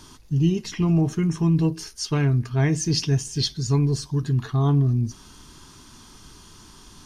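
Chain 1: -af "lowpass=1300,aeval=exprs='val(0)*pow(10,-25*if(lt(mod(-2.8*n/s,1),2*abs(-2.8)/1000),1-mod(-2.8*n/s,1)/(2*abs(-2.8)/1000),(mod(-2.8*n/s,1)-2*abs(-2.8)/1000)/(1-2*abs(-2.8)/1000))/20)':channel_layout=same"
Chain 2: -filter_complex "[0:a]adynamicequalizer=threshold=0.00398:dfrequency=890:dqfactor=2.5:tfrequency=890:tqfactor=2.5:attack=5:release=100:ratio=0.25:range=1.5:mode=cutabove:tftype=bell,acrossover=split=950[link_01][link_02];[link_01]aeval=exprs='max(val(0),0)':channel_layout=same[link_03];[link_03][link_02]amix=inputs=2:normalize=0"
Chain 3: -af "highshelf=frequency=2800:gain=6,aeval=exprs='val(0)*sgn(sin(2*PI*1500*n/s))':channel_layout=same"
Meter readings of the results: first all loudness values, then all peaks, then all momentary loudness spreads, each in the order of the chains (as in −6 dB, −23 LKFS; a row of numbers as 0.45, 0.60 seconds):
−31.5, −26.0, −19.5 LKFS; −12.5, −10.0, −6.5 dBFS; 9, 6, 5 LU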